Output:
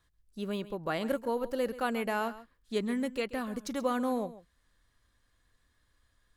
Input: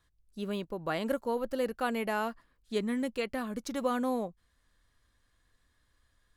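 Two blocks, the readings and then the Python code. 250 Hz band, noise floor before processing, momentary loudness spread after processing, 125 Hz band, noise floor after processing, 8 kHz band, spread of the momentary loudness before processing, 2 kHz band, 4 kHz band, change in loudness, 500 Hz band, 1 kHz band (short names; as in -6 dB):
0.0 dB, -73 dBFS, 6 LU, 0.0 dB, -73 dBFS, 0.0 dB, 7 LU, 0.0 dB, 0.0 dB, 0.0 dB, 0.0 dB, 0.0 dB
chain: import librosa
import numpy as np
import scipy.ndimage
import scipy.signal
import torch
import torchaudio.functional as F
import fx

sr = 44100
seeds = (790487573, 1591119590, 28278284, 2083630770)

y = x + 10.0 ** (-16.0 / 20.0) * np.pad(x, (int(134 * sr / 1000.0), 0))[:len(x)]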